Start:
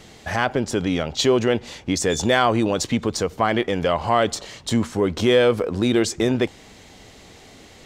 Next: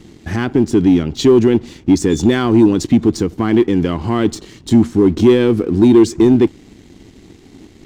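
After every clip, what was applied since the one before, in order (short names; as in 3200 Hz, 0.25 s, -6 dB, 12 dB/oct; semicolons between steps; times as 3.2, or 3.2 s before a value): resonant low shelf 440 Hz +9.5 dB, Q 3; sample leveller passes 1; gain -5 dB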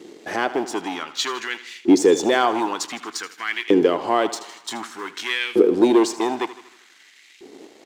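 feedback echo 79 ms, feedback 60%, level -15 dB; LFO high-pass saw up 0.54 Hz 380–2400 Hz; gain -1 dB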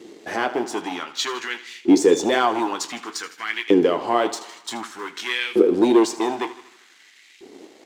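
flange 0.84 Hz, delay 8.1 ms, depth 8.7 ms, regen -53%; gain +3.5 dB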